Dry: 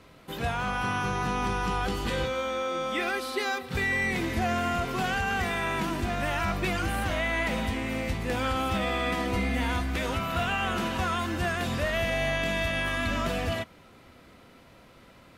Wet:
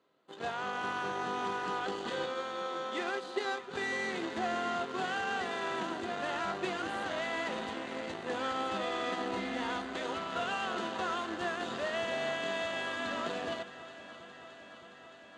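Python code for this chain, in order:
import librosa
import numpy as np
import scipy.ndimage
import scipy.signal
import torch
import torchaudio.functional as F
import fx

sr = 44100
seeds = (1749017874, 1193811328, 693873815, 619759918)

y = fx.cheby_harmonics(x, sr, harmonics=(7,), levels_db=(-19,), full_scale_db=-18.0)
y = fx.cabinet(y, sr, low_hz=290.0, low_slope=12, high_hz=6900.0, hz=(390.0, 2300.0, 5400.0), db=(4, -9, -10))
y = fx.echo_alternate(y, sr, ms=310, hz=820.0, feedback_pct=86, wet_db=-14)
y = y * 10.0 ** (-4.5 / 20.0)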